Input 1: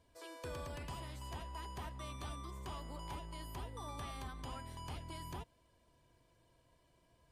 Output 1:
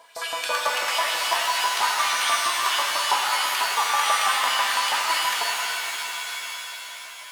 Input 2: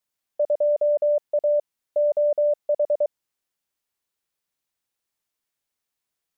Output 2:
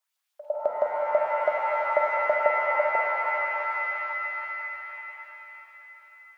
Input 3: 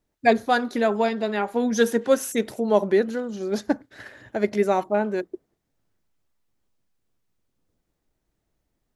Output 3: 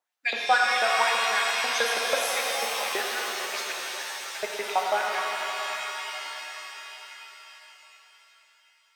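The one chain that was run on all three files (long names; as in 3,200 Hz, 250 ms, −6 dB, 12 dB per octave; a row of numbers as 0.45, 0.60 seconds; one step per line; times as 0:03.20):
loose part that buzzes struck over −29 dBFS, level −22 dBFS
auto-filter high-pass saw up 6.1 Hz 690–4,200 Hz
reverb with rising layers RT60 4 s, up +7 semitones, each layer −2 dB, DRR −1 dB
normalise the peak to −9 dBFS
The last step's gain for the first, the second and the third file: +21.0, −1.0, −4.5 decibels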